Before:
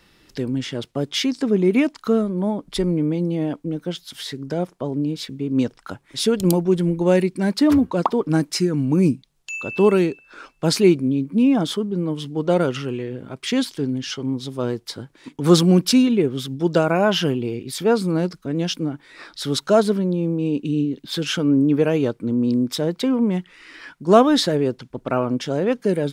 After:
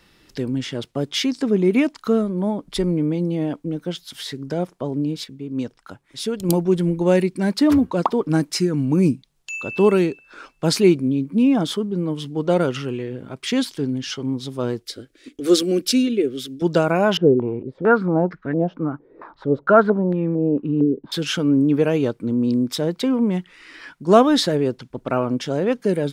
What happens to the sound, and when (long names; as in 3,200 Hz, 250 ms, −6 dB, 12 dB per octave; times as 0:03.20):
0:05.24–0:06.49: clip gain −6 dB
0:14.82–0:16.62: phaser with its sweep stopped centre 380 Hz, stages 4
0:17.17–0:21.12: low-pass on a step sequencer 4.4 Hz 440–1,800 Hz